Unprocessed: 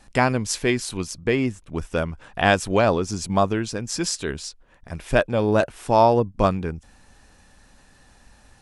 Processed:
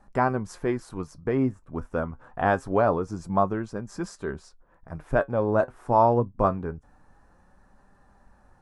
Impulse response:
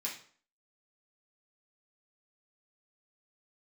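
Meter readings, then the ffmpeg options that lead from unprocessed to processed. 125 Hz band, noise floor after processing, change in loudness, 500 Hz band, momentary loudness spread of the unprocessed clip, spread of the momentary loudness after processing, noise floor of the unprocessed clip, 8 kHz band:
−4.5 dB, −60 dBFS, −4.0 dB, −3.5 dB, 13 LU, 14 LU, −55 dBFS, below −15 dB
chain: -af "highshelf=frequency=1900:width_type=q:width=1.5:gain=-14,flanger=delay=5:depth=3.1:regen=68:speed=0.25:shape=sinusoidal"

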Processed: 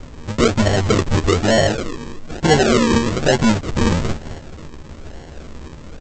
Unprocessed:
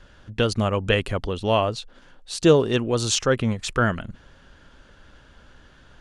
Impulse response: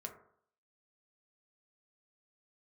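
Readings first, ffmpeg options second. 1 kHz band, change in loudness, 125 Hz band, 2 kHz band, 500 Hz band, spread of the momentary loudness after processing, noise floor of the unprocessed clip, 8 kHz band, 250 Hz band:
+6.0 dB, +5.5 dB, +6.5 dB, +6.0 dB, +4.0 dB, 18 LU, −53 dBFS, +3.5 dB, +7.5 dB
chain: -filter_complex "[0:a]highshelf=frequency=2300:gain=-7,asplit=4[link_01][link_02][link_03][link_04];[link_02]adelay=237,afreqshift=-110,volume=-19.5dB[link_05];[link_03]adelay=474,afreqshift=-220,volume=-29.1dB[link_06];[link_04]adelay=711,afreqshift=-330,volume=-38.8dB[link_07];[link_01][link_05][link_06][link_07]amix=inputs=4:normalize=0,asplit=2[link_08][link_09];[link_09]acompressor=threshold=-30dB:ratio=6,volume=1dB[link_10];[link_08][link_10]amix=inputs=2:normalize=0,asoftclip=type=hard:threshold=-21dB,acrossover=split=3700[link_11][link_12];[link_12]acompressor=threshold=-42dB:ratio=4:attack=1:release=60[link_13];[link_11][link_13]amix=inputs=2:normalize=0,asplit=2[link_14][link_15];[link_15]adelay=13,volume=-2.5dB[link_16];[link_14][link_16]amix=inputs=2:normalize=0,aresample=16000,acrusher=samples=18:mix=1:aa=0.000001:lfo=1:lforange=10.8:lforate=1.1,aresample=44100,volume=8dB"

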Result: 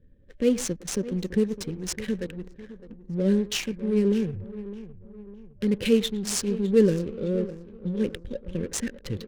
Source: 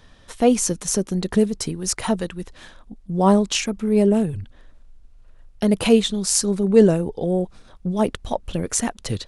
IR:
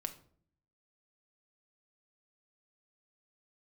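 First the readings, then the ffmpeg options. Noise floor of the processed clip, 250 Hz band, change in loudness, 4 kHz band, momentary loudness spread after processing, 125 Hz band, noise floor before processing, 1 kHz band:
−50 dBFS, −5.5 dB, −6.0 dB, −6.5 dB, 19 LU, −5.5 dB, −50 dBFS, −21.5 dB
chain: -filter_complex "[0:a]asplit=2[link_01][link_02];[link_02]adelay=110,highpass=300,lowpass=3400,asoftclip=type=hard:threshold=-12dB,volume=-15dB[link_03];[link_01][link_03]amix=inputs=2:normalize=0,afftfilt=real='re*(1-between(b*sr/4096,590,1500))':imag='im*(1-between(b*sr/4096,590,1500))':win_size=4096:overlap=0.75,asplit=2[link_04][link_05];[link_05]aecho=0:1:609|1218|1827|2436:0.178|0.0782|0.0344|0.0151[link_06];[link_04][link_06]amix=inputs=2:normalize=0,adynamicsmooth=sensitivity=5.5:basefreq=520,volume=-5.5dB"

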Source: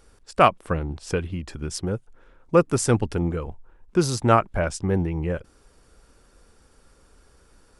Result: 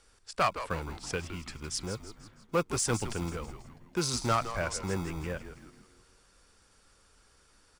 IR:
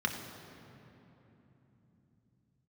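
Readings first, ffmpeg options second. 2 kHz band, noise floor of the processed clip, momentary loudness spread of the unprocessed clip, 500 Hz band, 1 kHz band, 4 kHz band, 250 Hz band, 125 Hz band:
−5.5 dB, −64 dBFS, 13 LU, −11.5 dB, −9.5 dB, −2.0 dB, −11.5 dB, −11.0 dB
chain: -filter_complex "[0:a]lowpass=9200,tiltshelf=frequency=1100:gain=-5.5,acrossover=split=250[link_01][link_02];[link_01]acrusher=samples=37:mix=1:aa=0.000001[link_03];[link_02]asoftclip=type=tanh:threshold=-14dB[link_04];[link_03][link_04]amix=inputs=2:normalize=0,asplit=6[link_05][link_06][link_07][link_08][link_09][link_10];[link_06]adelay=163,afreqshift=-110,volume=-11dB[link_11];[link_07]adelay=326,afreqshift=-220,volume=-17dB[link_12];[link_08]adelay=489,afreqshift=-330,volume=-23dB[link_13];[link_09]adelay=652,afreqshift=-440,volume=-29.1dB[link_14];[link_10]adelay=815,afreqshift=-550,volume=-35.1dB[link_15];[link_05][link_11][link_12][link_13][link_14][link_15]amix=inputs=6:normalize=0,volume=-5.5dB"

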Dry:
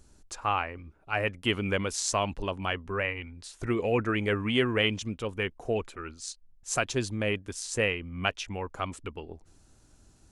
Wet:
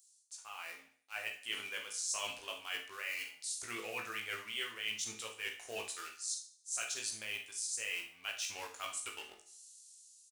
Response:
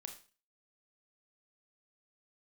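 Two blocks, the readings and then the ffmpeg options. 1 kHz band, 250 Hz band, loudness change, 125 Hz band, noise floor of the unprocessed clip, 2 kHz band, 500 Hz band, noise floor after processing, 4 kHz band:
−14.5 dB, −25.5 dB, −9.5 dB, −30.0 dB, −60 dBFS, −8.5 dB, −20.0 dB, −67 dBFS, −6.0 dB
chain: -filter_complex "[0:a]aresample=22050,aresample=44100,acrossover=split=3300[link_01][link_02];[link_01]aeval=exprs='sgn(val(0))*max(abs(val(0))-0.00473,0)':channel_layout=same[link_03];[link_03][link_02]amix=inputs=2:normalize=0,aderivative,asplit=2[link_04][link_05];[link_05]adelay=18,volume=-4dB[link_06];[link_04][link_06]amix=inputs=2:normalize=0,areverse,acompressor=threshold=-49dB:ratio=5,areverse,asubboost=boost=7:cutoff=60,dynaudnorm=framelen=320:gausssize=5:maxgain=9.5dB,highpass=41,aecho=1:1:74|148|222|296:0.119|0.0594|0.0297|0.0149[link_07];[1:a]atrim=start_sample=2205[link_08];[link_07][link_08]afir=irnorm=-1:irlink=0,volume=6.5dB"

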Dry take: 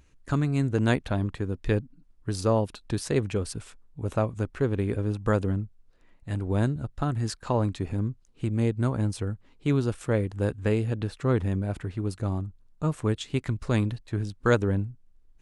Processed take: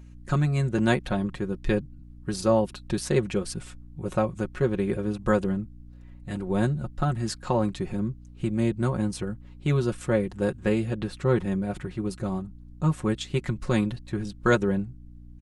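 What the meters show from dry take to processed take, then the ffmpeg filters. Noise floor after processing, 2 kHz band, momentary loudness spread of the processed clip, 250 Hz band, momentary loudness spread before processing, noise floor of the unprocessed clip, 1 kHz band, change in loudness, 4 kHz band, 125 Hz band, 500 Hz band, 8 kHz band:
−46 dBFS, +2.5 dB, 10 LU, +2.0 dB, 8 LU, −59 dBFS, +2.5 dB, +1.0 dB, +2.0 dB, −1.5 dB, +2.0 dB, +2.0 dB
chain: -af "aecho=1:1:5.5:0.78,aeval=exprs='val(0)+0.00562*(sin(2*PI*60*n/s)+sin(2*PI*2*60*n/s)/2+sin(2*PI*3*60*n/s)/3+sin(2*PI*4*60*n/s)/4+sin(2*PI*5*60*n/s)/5)':channel_layout=same"

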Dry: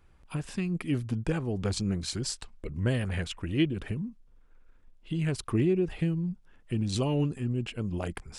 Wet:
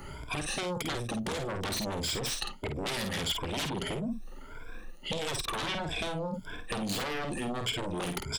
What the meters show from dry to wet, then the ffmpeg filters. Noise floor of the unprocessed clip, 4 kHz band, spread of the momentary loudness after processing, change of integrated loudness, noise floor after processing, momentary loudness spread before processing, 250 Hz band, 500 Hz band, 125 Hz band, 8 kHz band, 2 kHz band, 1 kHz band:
−58 dBFS, +6.5 dB, 7 LU, −2.5 dB, −44 dBFS, 9 LU, −6.5 dB, −2.0 dB, −9.0 dB, +4.0 dB, +4.5 dB, +8.0 dB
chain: -filter_complex "[0:a]afftfilt=real='re*pow(10,18/40*sin(2*PI*(1.7*log(max(b,1)*sr/1024/100)/log(2)-(1.6)*(pts-256)/sr)))':imag='im*pow(10,18/40*sin(2*PI*(1.7*log(max(b,1)*sr/1024/100)/log(2)-(1.6)*(pts-256)/sr)))':win_size=1024:overlap=0.75,aeval=exprs='0.299*sin(PI/2*8.91*val(0)/0.299)':channel_layout=same,areverse,acompressor=threshold=-22dB:ratio=8,areverse,asplit=2[link_01][link_02];[link_02]adelay=50,volume=-6.5dB[link_03];[link_01][link_03]amix=inputs=2:normalize=0,acrossover=split=200|5500[link_04][link_05][link_06];[link_04]acompressor=threshold=-37dB:ratio=4[link_07];[link_05]acompressor=threshold=-31dB:ratio=4[link_08];[link_06]acompressor=threshold=-37dB:ratio=4[link_09];[link_07][link_08][link_09]amix=inputs=3:normalize=0,adynamicequalizer=threshold=0.00282:dfrequency=3400:dqfactor=2.9:tfrequency=3400:tqfactor=2.9:attack=5:release=100:ratio=0.375:range=3:mode=boostabove:tftype=bell,volume=-3.5dB"

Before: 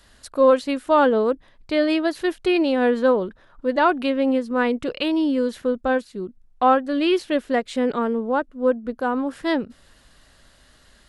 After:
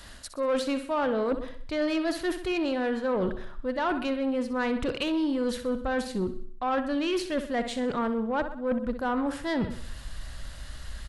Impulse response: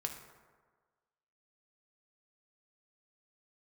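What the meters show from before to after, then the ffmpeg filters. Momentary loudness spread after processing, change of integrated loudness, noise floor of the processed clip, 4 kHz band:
10 LU, −7.5 dB, −42 dBFS, −5.0 dB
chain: -filter_complex "[0:a]equalizer=frequency=430:width=3.9:gain=-4,asplit=2[link_01][link_02];[link_02]adelay=134.1,volume=-28dB,highshelf=frequency=4000:gain=-3.02[link_03];[link_01][link_03]amix=inputs=2:normalize=0,areverse,acompressor=threshold=-29dB:ratio=16,areverse,asubboost=boost=3.5:cutoff=130,asplit=2[link_04][link_05];[link_05]aecho=0:1:63|126|189|252|315:0.266|0.125|0.0588|0.0276|0.013[link_06];[link_04][link_06]amix=inputs=2:normalize=0,asoftclip=type=tanh:threshold=-27.5dB,volume=7.5dB"

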